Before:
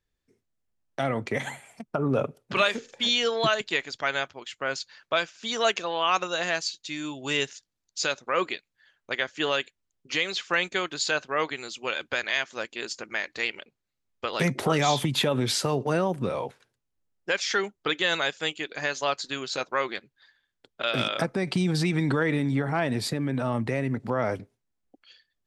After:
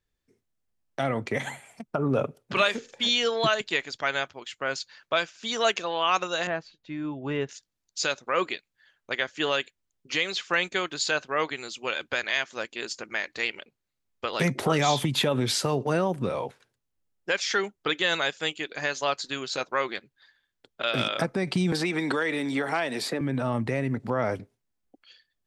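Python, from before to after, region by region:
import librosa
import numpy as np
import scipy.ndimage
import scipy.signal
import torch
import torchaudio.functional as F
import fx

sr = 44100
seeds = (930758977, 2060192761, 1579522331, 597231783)

y = fx.chain(x, sr, fx.lowpass(hz=1400.0, slope=12),
    fx.low_shelf(hz=210.0, db=7.0), at=(6.47, 7.49))
y = fx.chain(y, sr, fx.highpass(hz=350.0, slope=12),
    fx.band_squash(depth_pct=100), at=(21.72, 23.21))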